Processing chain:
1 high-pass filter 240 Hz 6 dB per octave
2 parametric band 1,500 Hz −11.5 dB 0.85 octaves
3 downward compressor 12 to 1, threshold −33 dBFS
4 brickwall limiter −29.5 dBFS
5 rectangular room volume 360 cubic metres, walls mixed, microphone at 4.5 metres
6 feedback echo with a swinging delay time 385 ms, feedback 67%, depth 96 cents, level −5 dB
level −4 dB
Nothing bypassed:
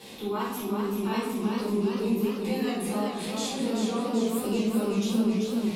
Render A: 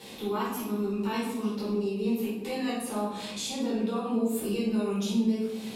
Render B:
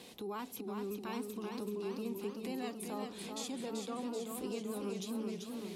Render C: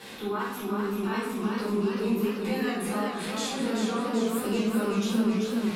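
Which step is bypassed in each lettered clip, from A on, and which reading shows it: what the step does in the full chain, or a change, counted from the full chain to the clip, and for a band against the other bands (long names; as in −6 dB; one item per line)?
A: 6, change in integrated loudness −2.0 LU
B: 5, change in momentary loudness spread −2 LU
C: 2, 2 kHz band +5.0 dB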